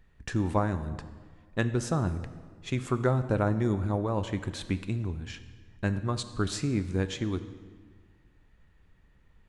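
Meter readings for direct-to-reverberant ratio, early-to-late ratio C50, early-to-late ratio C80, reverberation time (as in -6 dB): 10.5 dB, 12.5 dB, 14.0 dB, 1.6 s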